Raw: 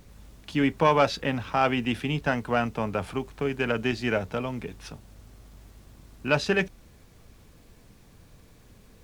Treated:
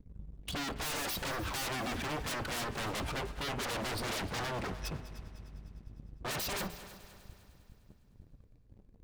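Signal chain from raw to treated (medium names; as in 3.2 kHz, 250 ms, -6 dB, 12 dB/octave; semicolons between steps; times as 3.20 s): spectral contrast enhancement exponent 2; waveshaping leveller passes 3; wavefolder -27.5 dBFS; de-hum 84.49 Hz, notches 38; on a send: multi-head delay 101 ms, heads second and third, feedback 52%, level -16.5 dB; on the sum: trim -3.5 dB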